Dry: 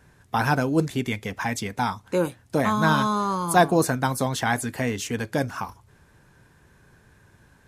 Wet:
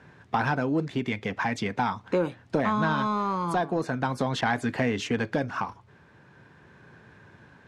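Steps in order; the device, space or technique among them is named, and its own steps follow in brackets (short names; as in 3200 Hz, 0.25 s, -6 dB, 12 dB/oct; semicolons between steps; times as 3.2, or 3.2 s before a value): AM radio (BPF 120–3500 Hz; compressor 4:1, threshold -26 dBFS, peak gain reduction 12.5 dB; soft clip -18.5 dBFS, distortion -20 dB; tremolo 0.42 Hz, depth 27%); 4.41–5.14 expander -36 dBFS; gain +5.5 dB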